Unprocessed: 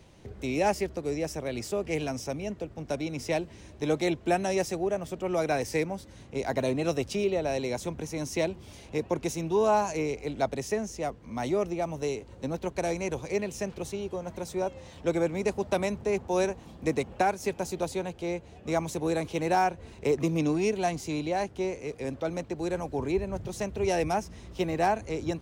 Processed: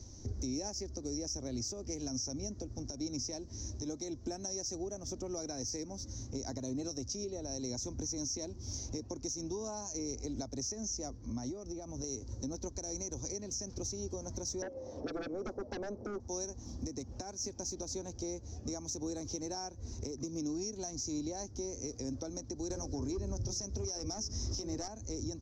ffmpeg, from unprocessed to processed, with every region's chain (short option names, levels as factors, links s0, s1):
-filter_complex "[0:a]asettb=1/sr,asplit=3[s0][s1][s2];[s0]atrim=end=11.174[s3];[s1]atrim=start=11.17:end=12.04,asetpts=PTS-STARTPTS,afade=t=in:d=0.004:c=qsin,afade=t=out:st=0.866:d=0.004:c=qsin,highshelf=f=7300:g=-11.5,acompressor=threshold=0.0141:ratio=10:attack=3.2:release=140:knee=1:detection=peak[s4];[s2]atrim=start=12.036[s5];[s3][s4]acrossfade=d=0.004:c1=hsin:c2=qsin[s6];[s6][s5]acrossfade=d=0.004:c1=qsin:c2=hsin,asettb=1/sr,asplit=3[s7][s8][s9];[s7]atrim=end=14.624[s10];[s8]atrim=start=14.62:end=16.2,asetpts=PTS-STARTPTS,afade=t=in:d=0.004:c=qsin,afade=t=out:st=1.576:d=0.004:c=qsin,bandpass=f=520:t=q:w=2.7,aeval=exprs='0.126*sin(PI/2*5.01*val(0)/0.126)':c=same[s11];[s9]atrim=start=16.196[s12];[s10][s11]acrossfade=d=0.004:c1=hsin:c2=qsin[s13];[s13][s12]acrossfade=d=0.004:c1=qsin:c2=hsin,asettb=1/sr,asplit=3[s14][s15][s16];[s14]atrim=end=22.704[s17];[s15]atrim=start=22.7:end=24.88,asetpts=PTS-STARTPTS,afade=t=in:d=0.004:c=qsin,afade=t=out:st=2.176:d=0.004:c=qsin,equalizer=f=5200:t=o:w=0.24:g=5.5,bandreject=f=60:t=h:w=6,bandreject=f=120:t=h:w=6,bandreject=f=180:t=h:w=6,bandreject=f=240:t=h:w=6,bandreject=f=300:t=h:w=6,bandreject=f=360:t=h:w=6,bandreject=f=420:t=h:w=6,bandreject=f=480:t=h:w=6,bandreject=f=540:t=h:w=6,aeval=exprs='0.2*sin(PI/2*2*val(0)/0.2)':c=same[s18];[s16]atrim=start=24.876[s19];[s17][s18]acrossfade=d=0.004:c1=hsin:c2=qsin[s20];[s20][s19]acrossfade=d=0.004:c1=qsin:c2=hsin,acompressor=threshold=0.0178:ratio=6,firequalizer=gain_entry='entry(110,0);entry(160,-16);entry(250,-2);entry(430,-13);entry(2800,-25);entry(5800,11);entry(8700,-21);entry(13000,-18)':delay=0.05:min_phase=1,alimiter=level_in=4.47:limit=0.0631:level=0:latency=1:release=110,volume=0.224,volume=2.51"